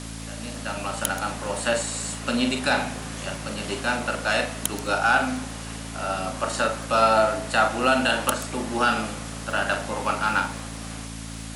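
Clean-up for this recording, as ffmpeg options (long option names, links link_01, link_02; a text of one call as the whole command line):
ffmpeg -i in.wav -af "adeclick=threshold=4,bandreject=frequency=55.4:width_type=h:width=4,bandreject=frequency=110.8:width_type=h:width=4,bandreject=frequency=166.2:width_type=h:width=4,bandreject=frequency=221.6:width_type=h:width=4,bandreject=frequency=277:width_type=h:width=4,afwtdn=0.011" out.wav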